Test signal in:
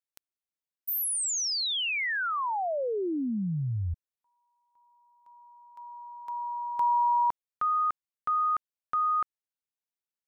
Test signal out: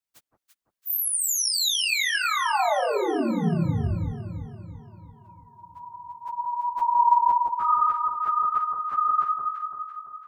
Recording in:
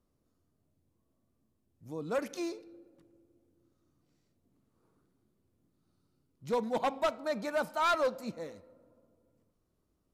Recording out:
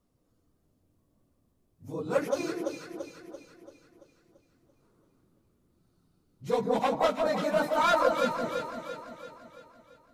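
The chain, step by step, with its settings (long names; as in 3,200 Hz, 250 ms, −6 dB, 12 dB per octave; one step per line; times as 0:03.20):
random phases in long frames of 50 ms
delay that swaps between a low-pass and a high-pass 169 ms, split 1,200 Hz, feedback 71%, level −2.5 dB
level +3.5 dB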